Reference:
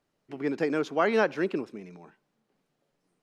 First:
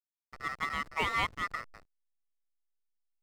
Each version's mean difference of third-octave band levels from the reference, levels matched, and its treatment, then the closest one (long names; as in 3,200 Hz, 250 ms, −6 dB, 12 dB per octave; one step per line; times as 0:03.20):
12.0 dB: ring modulation 1,600 Hz
slack as between gear wheels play −30.5 dBFS
level −3.5 dB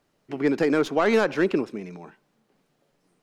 2.5 dB: stylus tracing distortion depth 0.072 ms
brickwall limiter −19 dBFS, peak gain reduction 7.5 dB
level +7.5 dB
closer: second